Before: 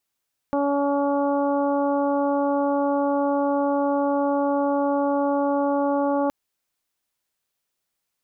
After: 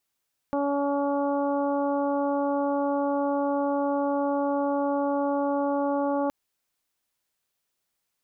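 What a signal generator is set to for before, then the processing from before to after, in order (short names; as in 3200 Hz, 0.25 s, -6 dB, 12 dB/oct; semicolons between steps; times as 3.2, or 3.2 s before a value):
steady additive tone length 5.77 s, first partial 283 Hz, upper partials 0/-3.5/-9/-17 dB, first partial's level -23 dB
limiter -19 dBFS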